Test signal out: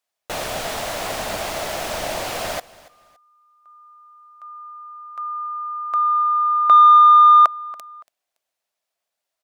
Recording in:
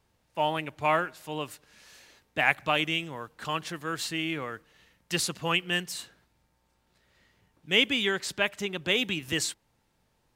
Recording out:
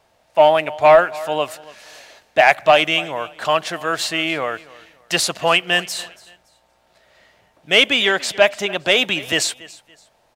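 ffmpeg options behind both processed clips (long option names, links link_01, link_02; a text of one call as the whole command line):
ffmpeg -i in.wav -filter_complex "[0:a]equalizer=frequency=650:width=2.8:gain=13,acontrast=35,aecho=1:1:283|566:0.0891|0.0258,asplit=2[link_01][link_02];[link_02]highpass=frequency=720:poles=1,volume=9dB,asoftclip=type=tanh:threshold=-2dB[link_03];[link_01][link_03]amix=inputs=2:normalize=0,lowpass=frequency=6600:poles=1,volume=-6dB,volume=1.5dB" out.wav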